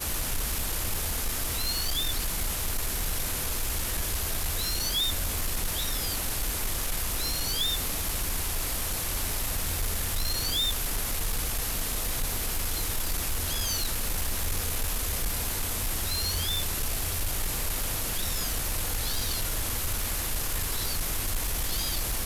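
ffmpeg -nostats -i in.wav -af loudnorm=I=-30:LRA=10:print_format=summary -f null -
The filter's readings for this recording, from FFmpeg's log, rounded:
Input Integrated:    -28.8 LUFS
Input True Peak:     -20.5 dBTP
Input LRA:             0.8 LU
Input Threshold:     -38.8 LUFS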